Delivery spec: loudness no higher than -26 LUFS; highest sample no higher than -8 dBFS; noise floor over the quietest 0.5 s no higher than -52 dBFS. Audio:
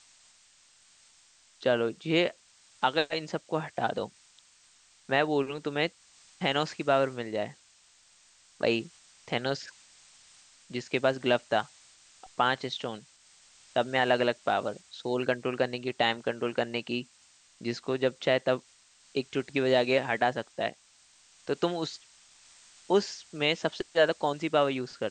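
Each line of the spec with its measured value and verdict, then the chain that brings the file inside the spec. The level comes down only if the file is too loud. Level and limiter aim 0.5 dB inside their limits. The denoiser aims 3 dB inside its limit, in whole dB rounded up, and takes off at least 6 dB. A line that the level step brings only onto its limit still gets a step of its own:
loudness -29.5 LUFS: OK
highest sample -10.0 dBFS: OK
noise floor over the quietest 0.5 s -61 dBFS: OK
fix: none

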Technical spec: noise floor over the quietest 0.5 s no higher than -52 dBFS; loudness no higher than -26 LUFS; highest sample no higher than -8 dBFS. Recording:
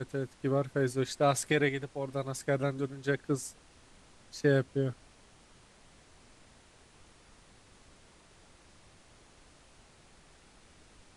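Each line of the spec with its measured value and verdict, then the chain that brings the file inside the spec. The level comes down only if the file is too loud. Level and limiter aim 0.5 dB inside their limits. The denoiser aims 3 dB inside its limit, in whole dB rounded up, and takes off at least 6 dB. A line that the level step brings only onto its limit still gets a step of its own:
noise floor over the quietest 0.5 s -59 dBFS: OK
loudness -31.5 LUFS: OK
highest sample -14.5 dBFS: OK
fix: none

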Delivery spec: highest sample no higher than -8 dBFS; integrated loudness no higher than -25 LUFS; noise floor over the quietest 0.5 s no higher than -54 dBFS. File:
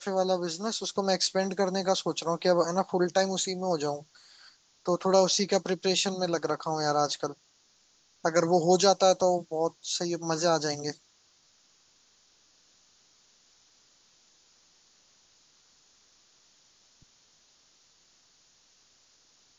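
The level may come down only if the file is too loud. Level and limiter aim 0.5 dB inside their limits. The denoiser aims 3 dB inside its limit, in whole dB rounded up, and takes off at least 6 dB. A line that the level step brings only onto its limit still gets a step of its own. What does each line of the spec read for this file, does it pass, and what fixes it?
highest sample -10.0 dBFS: OK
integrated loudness -27.5 LUFS: OK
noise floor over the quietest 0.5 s -65 dBFS: OK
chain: none

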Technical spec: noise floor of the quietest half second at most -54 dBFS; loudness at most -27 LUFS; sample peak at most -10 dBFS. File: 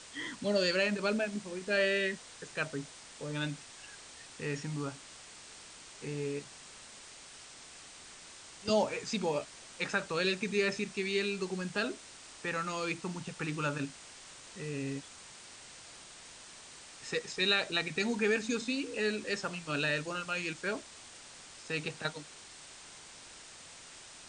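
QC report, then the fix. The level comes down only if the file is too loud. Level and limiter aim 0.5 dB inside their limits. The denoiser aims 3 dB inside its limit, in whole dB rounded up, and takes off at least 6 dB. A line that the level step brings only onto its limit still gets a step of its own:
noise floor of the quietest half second -52 dBFS: fail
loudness -34.0 LUFS: OK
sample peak -15.0 dBFS: OK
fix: denoiser 6 dB, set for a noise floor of -52 dBFS

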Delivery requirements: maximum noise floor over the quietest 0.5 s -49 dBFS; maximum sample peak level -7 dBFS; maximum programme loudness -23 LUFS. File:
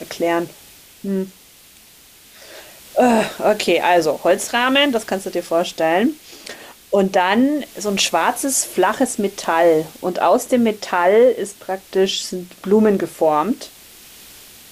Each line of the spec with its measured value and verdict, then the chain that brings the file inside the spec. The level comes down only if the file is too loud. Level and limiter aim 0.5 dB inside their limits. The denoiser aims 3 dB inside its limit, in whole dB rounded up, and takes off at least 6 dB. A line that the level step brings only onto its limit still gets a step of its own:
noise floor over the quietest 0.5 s -47 dBFS: fail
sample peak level -4.5 dBFS: fail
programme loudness -18.0 LUFS: fail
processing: gain -5.5 dB

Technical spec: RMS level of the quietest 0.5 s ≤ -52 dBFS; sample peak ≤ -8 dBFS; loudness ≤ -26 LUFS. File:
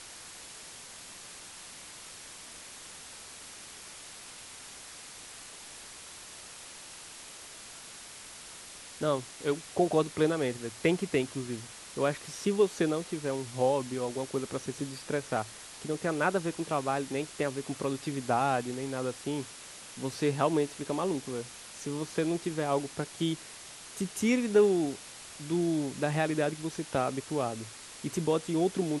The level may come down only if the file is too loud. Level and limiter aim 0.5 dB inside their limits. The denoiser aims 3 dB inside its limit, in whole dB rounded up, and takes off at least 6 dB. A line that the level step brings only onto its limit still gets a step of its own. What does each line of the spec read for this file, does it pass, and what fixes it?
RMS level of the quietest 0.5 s -47 dBFS: fail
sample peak -13.0 dBFS: OK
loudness -31.5 LUFS: OK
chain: denoiser 8 dB, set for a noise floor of -47 dBFS

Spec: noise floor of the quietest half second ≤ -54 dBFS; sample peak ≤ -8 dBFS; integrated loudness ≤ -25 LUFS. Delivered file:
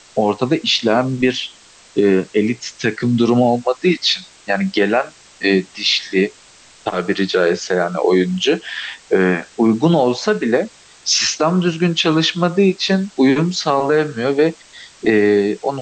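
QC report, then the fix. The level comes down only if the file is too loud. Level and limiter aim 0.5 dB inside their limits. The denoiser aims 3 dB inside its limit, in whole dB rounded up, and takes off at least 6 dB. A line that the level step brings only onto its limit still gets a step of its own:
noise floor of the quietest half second -46 dBFS: fail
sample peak -4.5 dBFS: fail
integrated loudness -17.0 LUFS: fail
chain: gain -8.5 dB

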